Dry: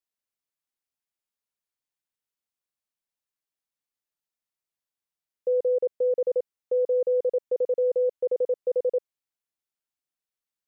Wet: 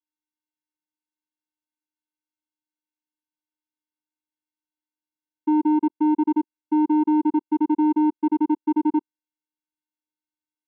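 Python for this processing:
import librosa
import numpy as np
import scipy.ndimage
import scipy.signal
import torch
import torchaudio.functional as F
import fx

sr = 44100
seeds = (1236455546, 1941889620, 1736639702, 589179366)

y = fx.vocoder(x, sr, bands=4, carrier='square', carrier_hz=305.0)
y = F.gain(torch.from_numpy(y), 5.5).numpy()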